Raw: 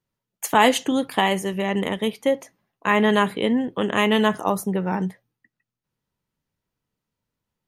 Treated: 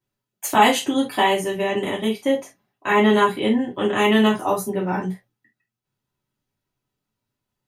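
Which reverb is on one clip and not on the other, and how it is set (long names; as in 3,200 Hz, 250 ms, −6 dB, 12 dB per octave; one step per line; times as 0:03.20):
reverb whose tail is shaped and stops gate 90 ms falling, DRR −6 dB
level −5.5 dB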